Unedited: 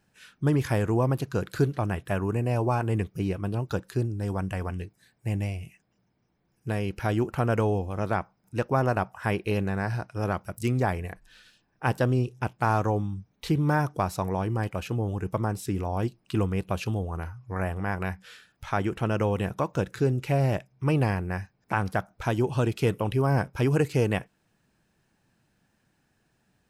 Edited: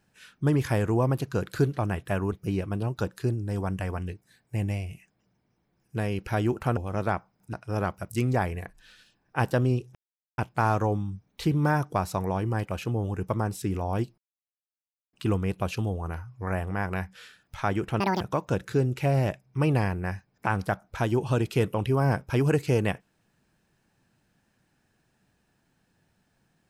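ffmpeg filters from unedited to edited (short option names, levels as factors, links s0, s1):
-filter_complex "[0:a]asplit=8[s0][s1][s2][s3][s4][s5][s6][s7];[s0]atrim=end=2.322[s8];[s1]atrim=start=3.038:end=7.492[s9];[s2]atrim=start=7.808:end=8.572[s10];[s3]atrim=start=9.998:end=12.42,asetpts=PTS-STARTPTS,afade=t=out:st=2.418:d=0.004:c=hsin,apad=pad_dur=0.43[s11];[s4]atrim=start=12.42:end=16.22,asetpts=PTS-STARTPTS,afade=t=in:d=0.004:c=hsin,afade=t=out:st=3.796:d=0.004:c=hsin,apad=pad_dur=0.95[s12];[s5]atrim=start=16.22:end=19.094,asetpts=PTS-STARTPTS,afade=t=in:d=0.004:c=hsin[s13];[s6]atrim=start=19.09:end=19.47,asetpts=PTS-STARTPTS,asetrate=81144,aresample=44100[s14];[s7]atrim=start=19.466[s15];[s8][s9]acrossfade=d=0.004:c1=hsin:c2=hsin[s16];[s16][s10]acrossfade=d=0.004:c1=hsin:c2=hsin[s17];[s11][s12][s13]concat=n=3:v=0:a=1[s18];[s17][s18]acrossfade=d=0.004:c1=hsin:c2=hsin[s19];[s19][s14]acrossfade=d=0.004:c1=hsin:c2=hsin[s20];[s20][s15]acrossfade=d=0.004:c1=hsin:c2=hsin"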